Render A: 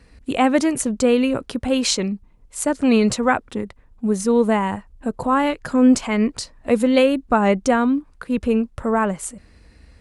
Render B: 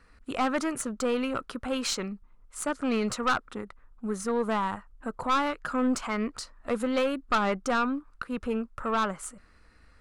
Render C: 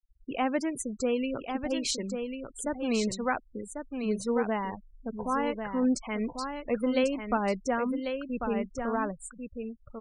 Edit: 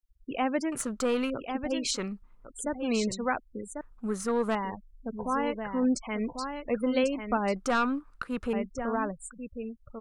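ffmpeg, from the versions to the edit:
ffmpeg -i take0.wav -i take1.wav -i take2.wav -filter_complex "[1:a]asplit=4[link_01][link_02][link_03][link_04];[2:a]asplit=5[link_05][link_06][link_07][link_08][link_09];[link_05]atrim=end=0.722[link_10];[link_01]atrim=start=0.718:end=1.302[link_11];[link_06]atrim=start=1.298:end=1.97[link_12];[link_02]atrim=start=1.93:end=2.48[link_13];[link_07]atrim=start=2.44:end=3.812[link_14];[link_03]atrim=start=3.808:end=4.552[link_15];[link_08]atrim=start=4.548:end=7.562[link_16];[link_04]atrim=start=7.558:end=8.532[link_17];[link_09]atrim=start=8.528[link_18];[link_10][link_11]acrossfade=duration=0.004:curve1=hsin:curve2=hsin[link_19];[link_19][link_12]acrossfade=duration=0.004:curve1=hsin:curve2=hsin[link_20];[link_20][link_13]acrossfade=duration=0.04:curve1=tri:curve2=tri[link_21];[link_21][link_14]acrossfade=duration=0.04:curve1=tri:curve2=tri[link_22];[link_22][link_15]acrossfade=duration=0.004:curve1=hsin:curve2=hsin[link_23];[link_23][link_16]acrossfade=duration=0.004:curve1=hsin:curve2=hsin[link_24];[link_24][link_17]acrossfade=duration=0.004:curve1=hsin:curve2=hsin[link_25];[link_25][link_18]acrossfade=duration=0.004:curve1=hsin:curve2=hsin" out.wav

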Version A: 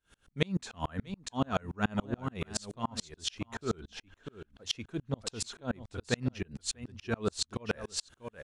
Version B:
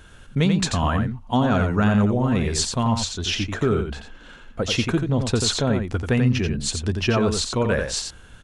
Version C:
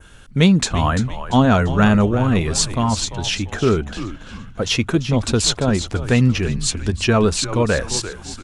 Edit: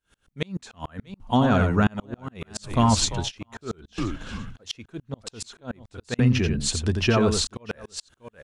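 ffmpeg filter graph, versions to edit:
ffmpeg -i take0.wav -i take1.wav -i take2.wav -filter_complex "[1:a]asplit=2[link_01][link_02];[2:a]asplit=2[link_03][link_04];[0:a]asplit=5[link_05][link_06][link_07][link_08][link_09];[link_05]atrim=end=1.202[link_10];[link_01]atrim=start=1.198:end=1.872[link_11];[link_06]atrim=start=1.868:end=2.79[link_12];[link_03]atrim=start=2.63:end=3.32[link_13];[link_07]atrim=start=3.16:end=3.982[link_14];[link_04]atrim=start=3.978:end=4.562[link_15];[link_08]atrim=start=4.558:end=6.192[link_16];[link_02]atrim=start=6.188:end=7.472[link_17];[link_09]atrim=start=7.468[link_18];[link_10][link_11]acrossfade=duration=0.004:curve1=hsin:curve2=hsin[link_19];[link_19][link_12]acrossfade=duration=0.004:curve1=hsin:curve2=hsin[link_20];[link_20][link_13]acrossfade=duration=0.16:curve1=tri:curve2=tri[link_21];[link_21][link_14]acrossfade=duration=0.16:curve1=tri:curve2=tri[link_22];[link_22][link_15]acrossfade=duration=0.004:curve1=hsin:curve2=hsin[link_23];[link_23][link_16]acrossfade=duration=0.004:curve1=hsin:curve2=hsin[link_24];[link_24][link_17]acrossfade=duration=0.004:curve1=hsin:curve2=hsin[link_25];[link_25][link_18]acrossfade=duration=0.004:curve1=hsin:curve2=hsin" out.wav

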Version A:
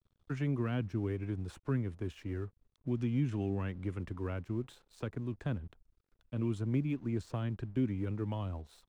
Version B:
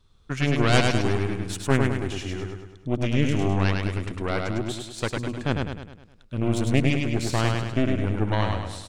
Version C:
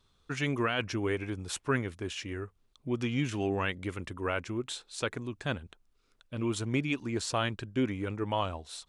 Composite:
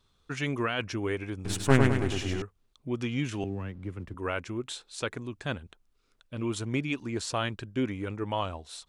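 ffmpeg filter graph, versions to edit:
ffmpeg -i take0.wav -i take1.wav -i take2.wav -filter_complex "[2:a]asplit=3[link_01][link_02][link_03];[link_01]atrim=end=1.452[link_04];[1:a]atrim=start=1.448:end=2.422[link_05];[link_02]atrim=start=2.418:end=3.442[link_06];[0:a]atrim=start=3.438:end=4.142[link_07];[link_03]atrim=start=4.138[link_08];[link_04][link_05]acrossfade=duration=0.004:curve1=hsin:curve2=hsin[link_09];[link_09][link_06]acrossfade=duration=0.004:curve1=hsin:curve2=hsin[link_10];[link_10][link_07]acrossfade=duration=0.004:curve1=hsin:curve2=hsin[link_11];[link_11][link_08]acrossfade=duration=0.004:curve1=hsin:curve2=hsin" out.wav

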